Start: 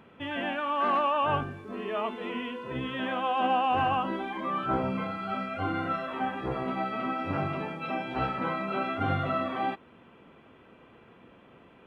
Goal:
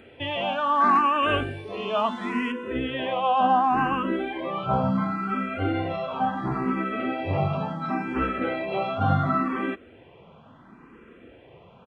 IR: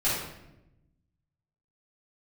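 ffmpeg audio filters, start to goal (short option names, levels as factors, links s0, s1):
-filter_complex "[0:a]asetnsamples=n=441:p=0,asendcmd='1.23 highshelf g 9;2.52 highshelf g -3',highshelf=f=2200:g=3.5,aresample=22050,aresample=44100,lowshelf=f=350:g=3,asplit=2[s0][s1];[s1]afreqshift=0.71[s2];[s0][s2]amix=inputs=2:normalize=1,volume=2.24"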